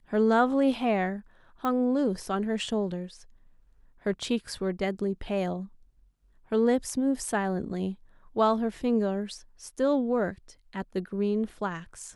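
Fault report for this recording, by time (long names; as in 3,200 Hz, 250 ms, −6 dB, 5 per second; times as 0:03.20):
0:01.65: click −18 dBFS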